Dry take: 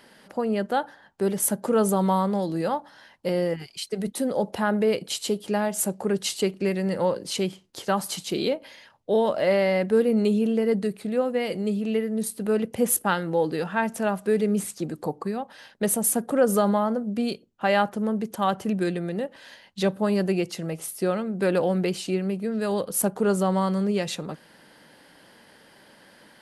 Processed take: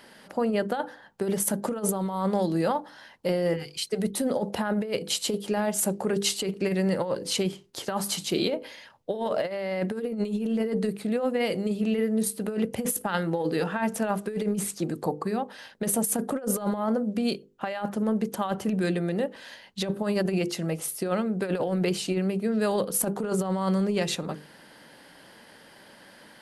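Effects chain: hum notches 50/100/150/200/250/300/350/400/450/500 Hz; compressor with a negative ratio -25 dBFS, ratio -0.5

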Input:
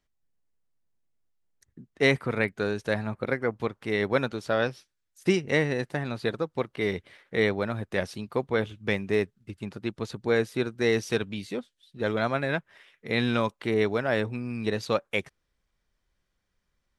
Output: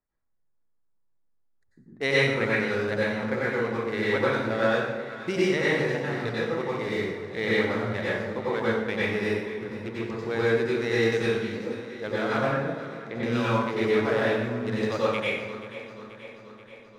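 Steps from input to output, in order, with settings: local Wiener filter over 15 samples; 12.38–13.23 s: low-pass that closes with the level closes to 550 Hz, closed at -23.5 dBFS; bass shelf 370 Hz -6 dB; echo whose repeats swap between lows and highs 241 ms, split 870 Hz, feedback 79%, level -12 dB; plate-style reverb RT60 1 s, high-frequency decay 0.75×, pre-delay 80 ms, DRR -8 dB; trim -4.5 dB

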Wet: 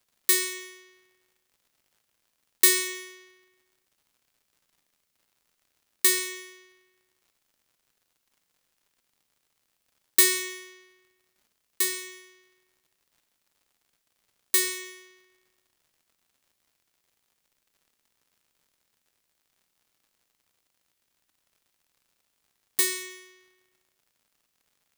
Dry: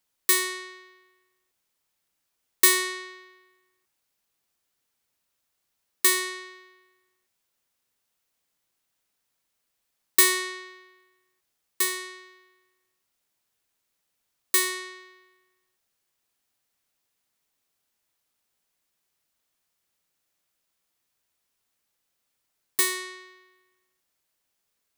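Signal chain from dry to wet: peaking EQ 910 Hz -8.5 dB 1.4 oct; crackle 130 per s -55 dBFS; Schroeder reverb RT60 0.69 s, combs from 29 ms, DRR 9.5 dB

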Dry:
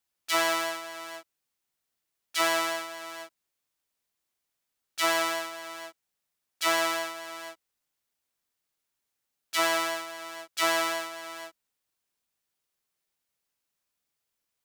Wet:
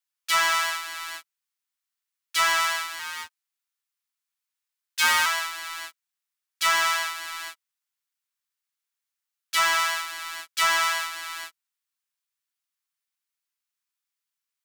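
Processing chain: 2.99–5.26 s: frequency shift +250 Hz; inverse Chebyshev high-pass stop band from 170 Hz, stop band 80 dB; waveshaping leveller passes 2

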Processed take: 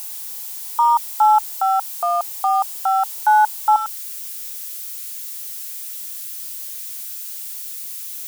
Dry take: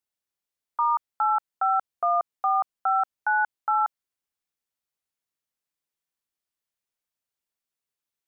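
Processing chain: zero-crossing glitches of -26.5 dBFS; peaking EQ 880 Hz +13.5 dB 0.4 oct, from 3.76 s -4 dB

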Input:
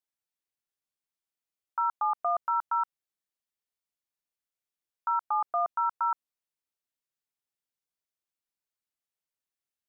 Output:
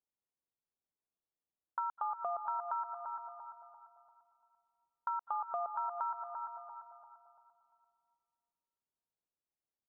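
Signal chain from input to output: low-pass 1.4 kHz 12 dB/octave; feedback delay 343 ms, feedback 45%, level -10.5 dB; level-controlled noise filter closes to 1 kHz, open at -27.5 dBFS; compression, threshold -34 dBFS, peak gain reduction 9 dB; reverberation RT60 1.9 s, pre-delay 197 ms, DRR 12.5 dB

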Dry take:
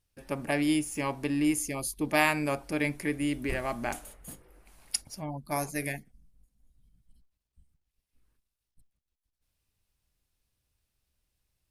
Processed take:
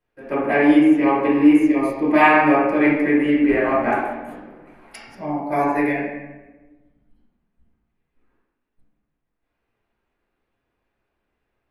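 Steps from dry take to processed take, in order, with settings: three-band isolator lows -22 dB, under 210 Hz, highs -21 dB, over 2.3 kHz; reverberation RT60 1.2 s, pre-delay 3 ms, DRR -8 dB; trim +3.5 dB

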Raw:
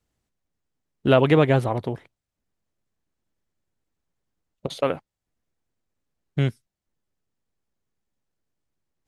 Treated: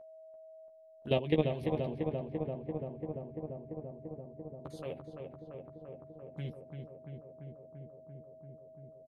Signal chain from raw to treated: hum notches 50/100/150 Hz; level held to a coarse grid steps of 15 dB; touch-sensitive phaser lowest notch 150 Hz, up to 1.4 kHz, full sweep at -28.5 dBFS; whistle 640 Hz -41 dBFS; doubling 13 ms -5.5 dB; filtered feedback delay 341 ms, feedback 84%, low-pass 2.1 kHz, level -5 dB; trim -8.5 dB

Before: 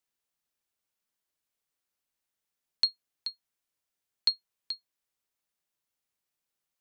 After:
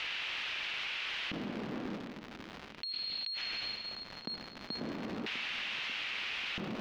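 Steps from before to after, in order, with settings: high-pass 160 Hz; reverse; upward compressor, threshold -30 dBFS; reverse; LFO band-pass square 0.38 Hz 220–2700 Hz; crackle 220 per s -65 dBFS; distance through air 260 m; on a send: bucket-brigade echo 540 ms, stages 2048, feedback 63%, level -14.5 dB; on the sum: plate-style reverb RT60 2.5 s, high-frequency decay 0.95×, DRR 18.5 dB; level flattener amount 100%

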